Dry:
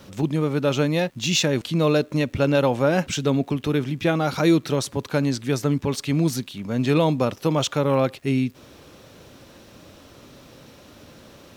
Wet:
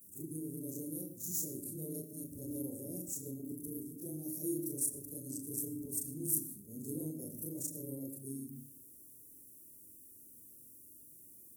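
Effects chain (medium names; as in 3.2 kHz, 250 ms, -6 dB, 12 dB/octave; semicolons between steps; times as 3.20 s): short-time spectra conjugated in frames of 89 ms; elliptic band-stop 360–9400 Hz, stop band 60 dB; pre-emphasis filter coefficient 0.97; on a send: reverberation RT60 0.55 s, pre-delay 77 ms, DRR 12.5 dB; on the sum: trim +8 dB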